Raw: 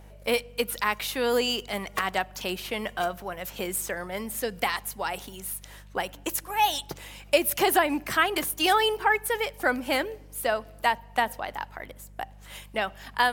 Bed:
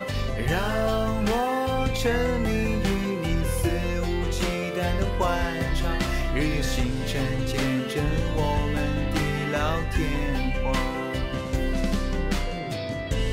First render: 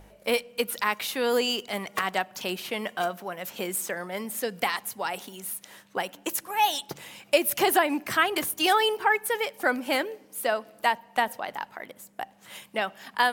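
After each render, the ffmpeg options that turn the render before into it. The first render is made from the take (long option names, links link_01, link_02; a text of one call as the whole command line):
ffmpeg -i in.wav -af "bandreject=frequency=50:width_type=h:width=4,bandreject=frequency=100:width_type=h:width=4,bandreject=frequency=150:width_type=h:width=4" out.wav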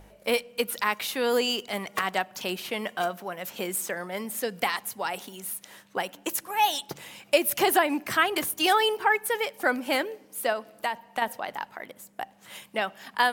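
ffmpeg -i in.wav -filter_complex "[0:a]asettb=1/sr,asplit=3[link_01][link_02][link_03];[link_01]atrim=end=10.524[link_04];[link_02]atrim=start=10.52:end=11.22,asetpts=PTS-STARTPTS,afade=type=in:duration=0.004:curve=qsin,afade=type=out:start_time=0.696:duration=0.004:curve=qsin,acompressor=threshold=-25dB:ratio=2.5:attack=3.2:release=140:knee=1:detection=peak[link_05];[link_03]atrim=start=11.216[link_06];[link_04][link_05]acrossfade=duration=0.004:curve1=hsin:curve2=qsin[link_07];[link_07][link_06]acrossfade=duration=0.004:curve1=qsin:curve2=hsin" out.wav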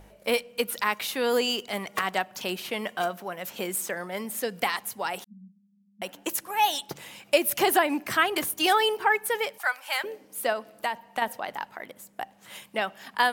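ffmpeg -i in.wav -filter_complex "[0:a]asettb=1/sr,asplit=3[link_01][link_02][link_03];[link_01]atrim=end=5.244[link_04];[link_02]atrim=start=5.24:end=6.02,asetpts=PTS-STARTPTS,afade=type=in:duration=0.004:curve=qsin,afade=type=out:start_time=0.776:duration=0.004:curve=qsin,asuperpass=centerf=200:order=20:qfactor=3.3[link_05];[link_03]atrim=start=6.016[link_06];[link_04][link_05]acrossfade=duration=0.004:curve1=hsin:curve2=qsin[link_07];[link_07][link_06]acrossfade=duration=0.004:curve1=qsin:curve2=hsin,asettb=1/sr,asplit=3[link_08][link_09][link_10];[link_08]atrim=end=9.584[link_11];[link_09]atrim=start=9.58:end=10.04,asetpts=PTS-STARTPTS,afade=type=in:duration=0.004:curve=qsin,afade=type=out:start_time=0.456:duration=0.004:curve=qsin,highpass=frequency=830:width=0.5412,highpass=frequency=830:width=1.3066[link_12];[link_10]atrim=start=10.036[link_13];[link_11][link_12]acrossfade=duration=0.004:curve1=hsin:curve2=qsin[link_14];[link_14][link_13]acrossfade=duration=0.004:curve1=qsin:curve2=hsin" out.wav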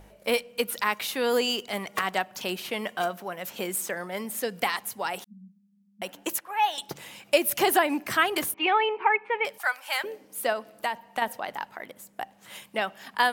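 ffmpeg -i in.wav -filter_complex "[0:a]asettb=1/sr,asplit=3[link_01][link_02][link_03];[link_01]atrim=end=6.384[link_04];[link_02]atrim=start=6.38:end=6.78,asetpts=PTS-STARTPTS,afade=type=in:duration=0.004:curve=qsin,afade=type=out:start_time=0.396:duration=0.004:curve=qsin,acrossover=split=480 3200:gain=0.2 1 0.2[link_05][link_06][link_07];[link_05][link_06][link_07]amix=inputs=3:normalize=0[link_08];[link_03]atrim=start=6.776[link_09];[link_04][link_08]acrossfade=duration=0.004:curve1=hsin:curve2=qsin[link_10];[link_10][link_09]acrossfade=duration=0.004:curve1=qsin:curve2=hsin,asettb=1/sr,asplit=3[link_11][link_12][link_13];[link_11]atrim=end=8.544[link_14];[link_12]atrim=start=8.54:end=9.45,asetpts=PTS-STARTPTS,afade=type=in:duration=0.004:curve=qsin,afade=type=out:start_time=0.906:duration=0.004:curve=qsin,highpass=300,equalizer=frequency=650:width_type=q:width=4:gain=-9,equalizer=frequency=930:width_type=q:width=4:gain=5,equalizer=frequency=1600:width_type=q:width=4:gain=-7,equalizer=frequency=2400:width_type=q:width=4:gain=10,lowpass=frequency=2500:width=0.5412,lowpass=frequency=2500:width=1.3066[link_15];[link_13]atrim=start=9.446[link_16];[link_14][link_15]acrossfade=duration=0.004:curve1=hsin:curve2=qsin[link_17];[link_17][link_16]acrossfade=duration=0.004:curve1=qsin:curve2=hsin" out.wav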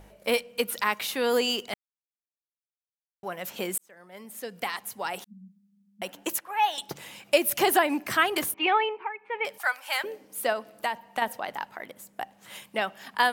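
ffmpeg -i in.wav -filter_complex "[0:a]asplit=5[link_01][link_02][link_03][link_04][link_05];[link_01]atrim=end=1.74,asetpts=PTS-STARTPTS,afade=type=out:start_time=1.736:duration=0.004:curve=hsin[link_06];[link_02]atrim=start=1.74:end=3.23,asetpts=PTS-STARTPTS,volume=0[link_07];[link_03]atrim=start=3.23:end=3.78,asetpts=PTS-STARTPTS,afade=type=in:duration=0.004:curve=hsin,afade=type=out:start_time=0.546:duration=0.004:curve=hsin[link_08];[link_04]atrim=start=3.78:end=9.14,asetpts=PTS-STARTPTS,afade=type=in:duration=1.54,afade=type=out:start_time=4.97:duration=0.39:silence=0.141254[link_09];[link_05]atrim=start=9.14,asetpts=PTS-STARTPTS,afade=type=in:duration=0.39:silence=0.141254[link_10];[link_06][link_07][link_08][link_09][link_10]concat=n=5:v=0:a=1" out.wav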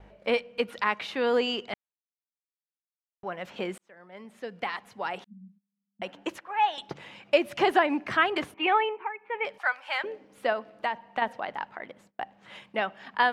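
ffmpeg -i in.wav -af "lowpass=3000,agate=range=-21dB:threshold=-57dB:ratio=16:detection=peak" out.wav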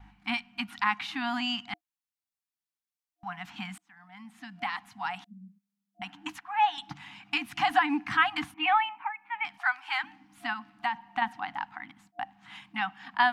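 ffmpeg -i in.wav -af "afftfilt=real='re*(1-between(b*sr/4096,320,700))':imag='im*(1-between(b*sr/4096,320,700))':win_size=4096:overlap=0.75" out.wav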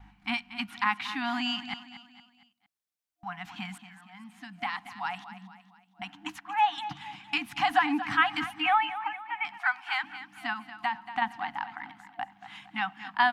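ffmpeg -i in.wav -af "aecho=1:1:231|462|693|924:0.224|0.0985|0.0433|0.0191" out.wav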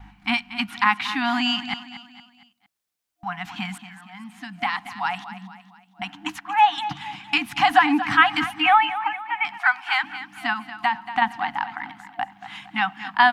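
ffmpeg -i in.wav -af "volume=8dB,alimiter=limit=-2dB:level=0:latency=1" out.wav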